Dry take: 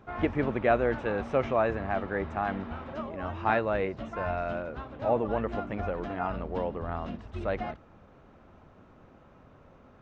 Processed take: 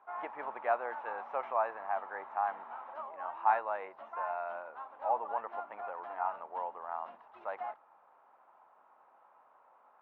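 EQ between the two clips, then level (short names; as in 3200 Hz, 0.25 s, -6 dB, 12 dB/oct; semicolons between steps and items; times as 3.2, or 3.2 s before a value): ladder band-pass 1000 Hz, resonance 60%; +5.5 dB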